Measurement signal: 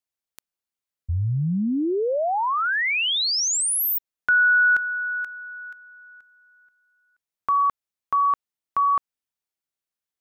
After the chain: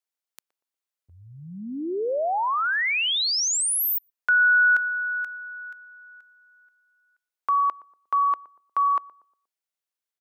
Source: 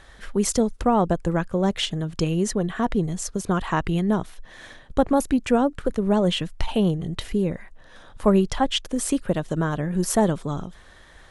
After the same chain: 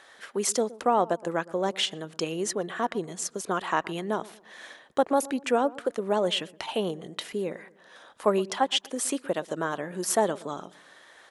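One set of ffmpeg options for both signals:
-filter_complex "[0:a]highpass=400,asplit=2[a][b];[b]adelay=119,lowpass=f=860:p=1,volume=-18dB,asplit=2[c][d];[d]adelay=119,lowpass=f=860:p=1,volume=0.43,asplit=2[e][f];[f]adelay=119,lowpass=f=860:p=1,volume=0.43,asplit=2[g][h];[h]adelay=119,lowpass=f=860:p=1,volume=0.43[i];[a][c][e][g][i]amix=inputs=5:normalize=0,volume=-1dB"

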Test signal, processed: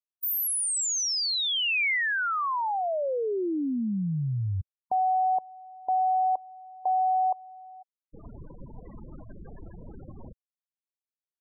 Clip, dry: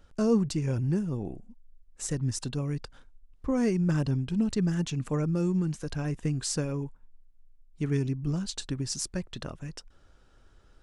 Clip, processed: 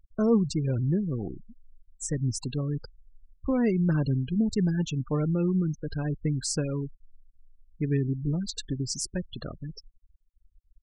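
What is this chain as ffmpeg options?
-af "afftfilt=real='re*gte(hypot(re,im),0.02)':imag='im*gte(hypot(re,im),0.02)':win_size=1024:overlap=0.75,equalizer=f=2.3k:w=2.3:g=3,volume=1.5dB"

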